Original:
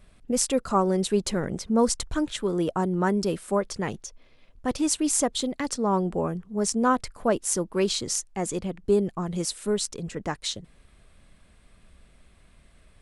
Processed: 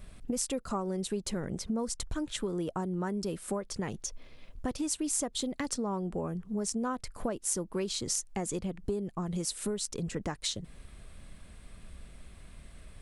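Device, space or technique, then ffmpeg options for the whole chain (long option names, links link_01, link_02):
ASMR close-microphone chain: -af "lowshelf=frequency=250:gain=4.5,acompressor=threshold=-34dB:ratio=6,highshelf=frequency=6800:gain=5,volume=2.5dB"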